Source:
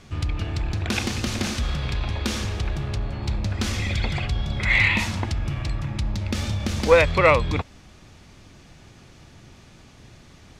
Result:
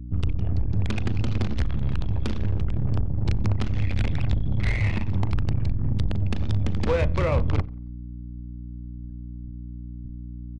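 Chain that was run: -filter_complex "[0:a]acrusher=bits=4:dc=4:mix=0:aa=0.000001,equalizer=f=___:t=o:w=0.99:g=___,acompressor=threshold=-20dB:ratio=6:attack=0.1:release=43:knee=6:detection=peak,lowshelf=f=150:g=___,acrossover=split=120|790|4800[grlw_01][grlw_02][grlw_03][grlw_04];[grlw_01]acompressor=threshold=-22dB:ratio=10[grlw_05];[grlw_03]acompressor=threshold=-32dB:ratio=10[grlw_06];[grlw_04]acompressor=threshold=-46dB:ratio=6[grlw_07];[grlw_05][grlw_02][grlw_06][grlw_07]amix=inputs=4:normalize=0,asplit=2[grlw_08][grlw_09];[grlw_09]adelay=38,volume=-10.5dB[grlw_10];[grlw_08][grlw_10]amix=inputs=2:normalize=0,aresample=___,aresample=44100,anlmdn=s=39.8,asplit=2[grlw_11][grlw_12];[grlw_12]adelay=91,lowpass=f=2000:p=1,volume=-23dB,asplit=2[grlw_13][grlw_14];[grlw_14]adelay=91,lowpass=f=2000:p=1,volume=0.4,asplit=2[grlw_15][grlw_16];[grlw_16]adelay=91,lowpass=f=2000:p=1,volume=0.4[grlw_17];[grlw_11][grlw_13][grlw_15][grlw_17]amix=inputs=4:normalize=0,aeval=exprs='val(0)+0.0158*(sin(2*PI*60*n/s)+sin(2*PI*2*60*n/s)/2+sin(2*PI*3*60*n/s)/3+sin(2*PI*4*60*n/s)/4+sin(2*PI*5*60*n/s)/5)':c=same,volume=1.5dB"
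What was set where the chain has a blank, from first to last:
99, 4.5, 9.5, 22050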